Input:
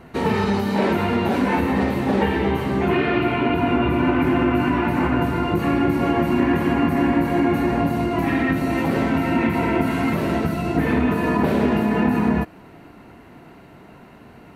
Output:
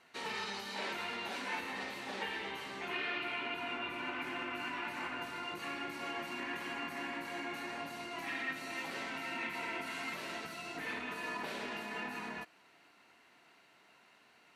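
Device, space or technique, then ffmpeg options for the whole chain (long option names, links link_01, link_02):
piezo pickup straight into a mixer: -af "lowpass=5500,aderivative"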